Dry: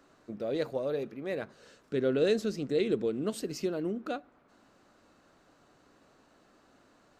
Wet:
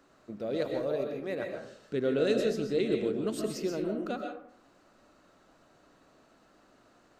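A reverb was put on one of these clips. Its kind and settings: algorithmic reverb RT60 0.59 s, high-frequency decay 0.45×, pre-delay 90 ms, DRR 2.5 dB; trim -1 dB

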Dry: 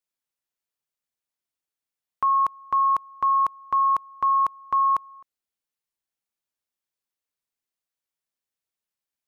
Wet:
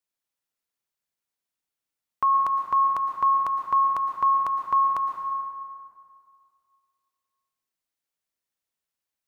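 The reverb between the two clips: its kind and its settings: plate-style reverb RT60 2.2 s, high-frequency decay 0.65×, pre-delay 100 ms, DRR 3.5 dB

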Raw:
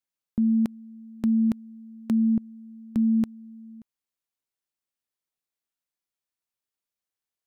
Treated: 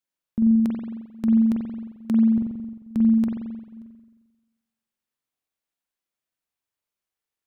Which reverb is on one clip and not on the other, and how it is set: spring tank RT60 1.2 s, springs 44 ms, chirp 60 ms, DRR -0.5 dB

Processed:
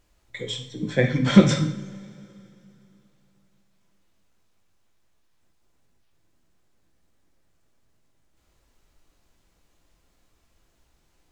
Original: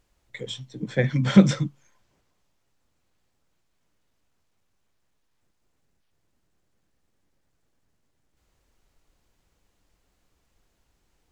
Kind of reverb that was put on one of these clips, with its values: two-slope reverb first 0.55 s, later 3.1 s, from -22 dB, DRR 3.5 dB; trim +2 dB

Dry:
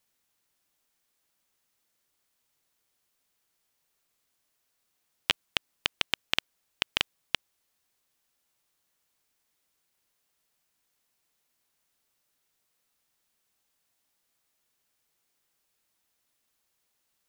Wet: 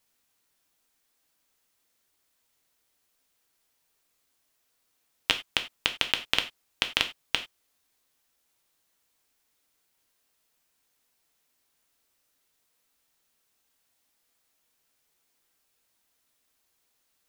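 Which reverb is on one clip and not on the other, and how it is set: gated-style reverb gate 120 ms falling, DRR 6 dB; trim +2 dB

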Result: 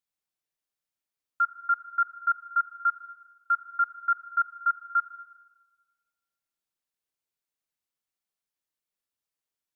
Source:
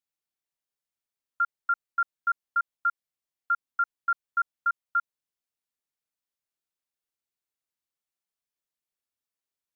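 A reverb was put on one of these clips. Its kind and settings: simulated room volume 1900 m³, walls mixed, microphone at 0.5 m

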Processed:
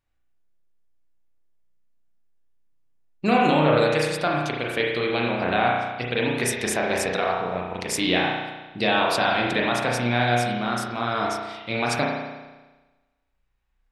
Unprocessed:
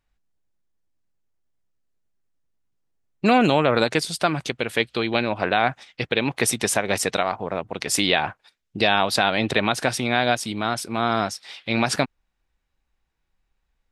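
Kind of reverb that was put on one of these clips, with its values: spring tank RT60 1.2 s, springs 33 ms, chirp 60 ms, DRR -2.5 dB; trim -5 dB

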